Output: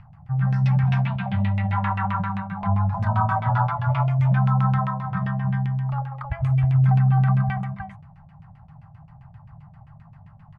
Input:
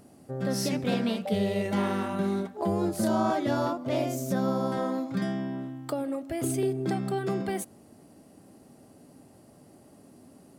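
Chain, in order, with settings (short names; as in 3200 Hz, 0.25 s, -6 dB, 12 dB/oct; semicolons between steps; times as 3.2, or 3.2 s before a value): elliptic band-stop 150–880 Hz, stop band 50 dB; tilt -3 dB/oct; on a send: tapped delay 91/320 ms -9.5/-4.5 dB; on the sum: LFO low-pass saw down 7.6 Hz 380–2700 Hz; gain +6 dB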